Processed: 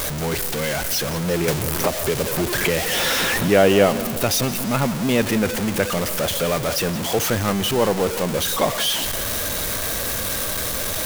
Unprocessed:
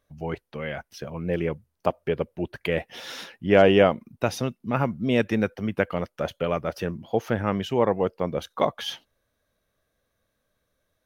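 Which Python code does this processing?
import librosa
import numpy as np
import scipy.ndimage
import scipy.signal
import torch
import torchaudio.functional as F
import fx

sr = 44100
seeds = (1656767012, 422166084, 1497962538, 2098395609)

y = x + 0.5 * 10.0 ** (-22.0 / 20.0) * np.sign(x)
y = fx.high_shelf(y, sr, hz=4500.0, db=8.5)
y = fx.echo_feedback(y, sr, ms=173, feedback_pct=56, wet_db=-15.0)
y = fx.band_squash(y, sr, depth_pct=100, at=(1.48, 3.48))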